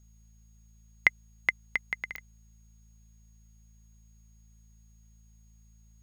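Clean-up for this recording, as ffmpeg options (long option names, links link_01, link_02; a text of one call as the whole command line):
ffmpeg -i in.wav -af "adeclick=threshold=4,bandreject=frequency=54.7:width_type=h:width=4,bandreject=frequency=109.4:width_type=h:width=4,bandreject=frequency=164.1:width_type=h:width=4,bandreject=frequency=218.8:width_type=h:width=4,bandreject=frequency=6600:width=30" out.wav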